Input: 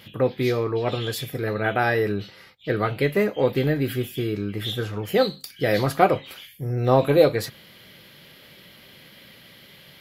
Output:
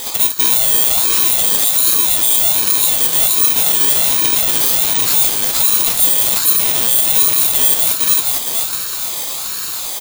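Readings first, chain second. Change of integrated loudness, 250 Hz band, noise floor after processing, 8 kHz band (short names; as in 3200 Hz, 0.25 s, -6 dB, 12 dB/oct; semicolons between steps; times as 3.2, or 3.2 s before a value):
+13.0 dB, -6.5 dB, -23 dBFS, +32.0 dB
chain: FFT order left unsorted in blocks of 64 samples; in parallel at +3 dB: compressor, threshold -33 dBFS, peak gain reduction 20.5 dB; on the sum: soft clip -12 dBFS, distortion -14 dB; HPF 1400 Hz 12 dB/oct; on a send: feedback echo 0.459 s, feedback 43%, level -3 dB; on the sum: maximiser +20 dB; ring modulator with a swept carrier 1700 Hz, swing 20%, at 1.3 Hz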